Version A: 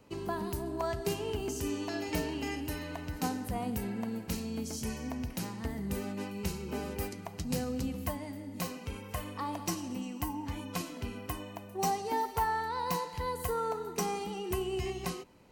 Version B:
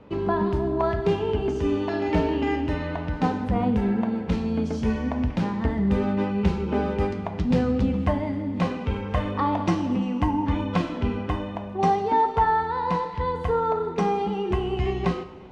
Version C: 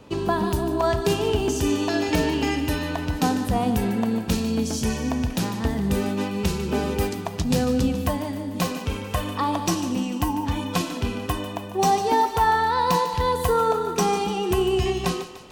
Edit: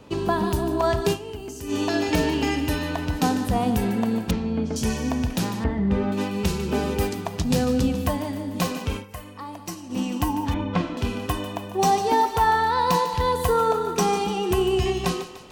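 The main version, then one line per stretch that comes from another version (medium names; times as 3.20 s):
C
1.14–1.72 s: from A, crossfade 0.10 s
4.31–4.76 s: from B
5.64–6.12 s: from B
9.01–9.94 s: from A, crossfade 0.10 s
10.54–10.97 s: from B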